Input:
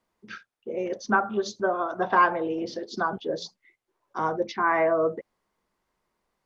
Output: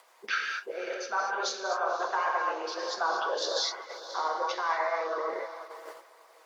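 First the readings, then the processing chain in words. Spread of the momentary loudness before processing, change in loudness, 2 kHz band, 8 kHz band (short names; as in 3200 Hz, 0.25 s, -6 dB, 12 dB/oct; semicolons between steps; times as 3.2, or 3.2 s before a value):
19 LU, -5.0 dB, -2.5 dB, n/a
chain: non-linear reverb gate 0.27 s flat, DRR -1.5 dB; reverse; compressor 10:1, threshold -35 dBFS, peak gain reduction 20.5 dB; reverse; HPF 520 Hz 24 dB/oct; wow and flutter 25 cents; upward compressor, threshold -46 dBFS; on a send: diffused feedback echo 0.537 s, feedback 48%, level -12 dB; on the sum: harmonic-percussive split percussive +7 dB; gate -49 dBFS, range -11 dB; gain +7 dB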